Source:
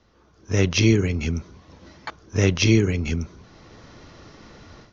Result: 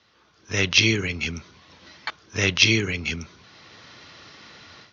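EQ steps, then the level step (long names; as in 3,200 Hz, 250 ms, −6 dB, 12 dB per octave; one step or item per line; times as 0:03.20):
Chebyshev band-pass filter 100–3,900 Hz, order 2
tilt shelving filter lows −8.5 dB, about 1,100 Hz
+1.5 dB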